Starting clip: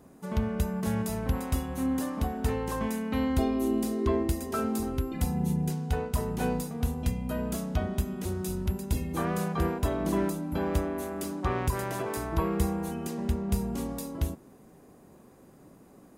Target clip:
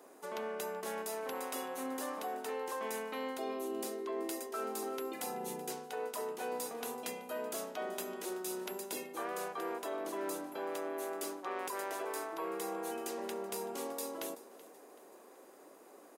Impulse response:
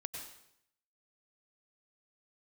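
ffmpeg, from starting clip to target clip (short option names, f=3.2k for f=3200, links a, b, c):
-af "highpass=f=370:w=0.5412,highpass=f=370:w=1.3066,aecho=1:1:380|760|1140:0.1|0.042|0.0176,areverse,acompressor=threshold=-38dB:ratio=6,areverse,volume=2dB"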